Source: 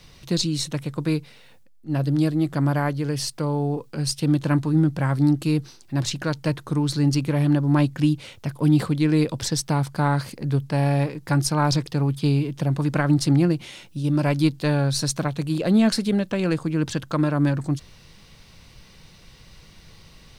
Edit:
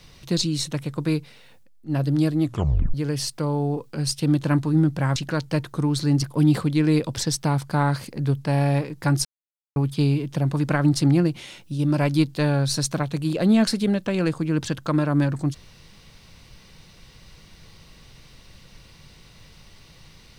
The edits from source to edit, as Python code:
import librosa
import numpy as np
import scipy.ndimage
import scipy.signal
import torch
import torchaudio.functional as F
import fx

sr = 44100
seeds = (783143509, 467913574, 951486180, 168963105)

y = fx.edit(x, sr, fx.tape_stop(start_s=2.43, length_s=0.51),
    fx.cut(start_s=5.16, length_s=0.93),
    fx.cut(start_s=7.16, length_s=1.32),
    fx.silence(start_s=11.5, length_s=0.51), tone=tone)